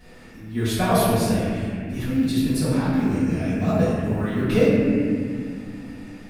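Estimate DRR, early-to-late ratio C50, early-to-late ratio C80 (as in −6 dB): −13.0 dB, −3.0 dB, −0.5 dB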